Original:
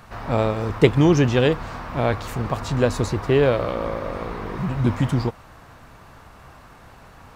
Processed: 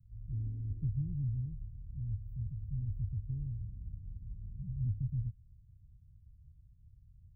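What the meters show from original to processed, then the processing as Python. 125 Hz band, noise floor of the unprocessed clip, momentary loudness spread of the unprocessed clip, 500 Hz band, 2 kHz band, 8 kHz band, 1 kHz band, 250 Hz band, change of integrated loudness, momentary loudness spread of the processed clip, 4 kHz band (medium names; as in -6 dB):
-12.5 dB, -47 dBFS, 12 LU, under -40 dB, under -40 dB, under -40 dB, under -40 dB, -24.5 dB, -17.5 dB, 11 LU, under -40 dB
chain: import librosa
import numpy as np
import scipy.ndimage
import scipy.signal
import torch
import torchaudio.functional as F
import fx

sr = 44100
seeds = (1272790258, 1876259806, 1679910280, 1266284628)

y = fx.cheby_harmonics(x, sr, harmonics=(6,), levels_db=(-25,), full_scale_db=-1.5)
y = fx.spec_paint(y, sr, seeds[0], shape='noise', start_s=0.31, length_s=0.56, low_hz=240.0, high_hz=2200.0, level_db=-9.0)
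y = scipy.signal.sosfilt(scipy.signal.cheby2(4, 80, [650.0, 8300.0], 'bandstop', fs=sr, output='sos'), y)
y = y * 10.0 ** (-7.0 / 20.0)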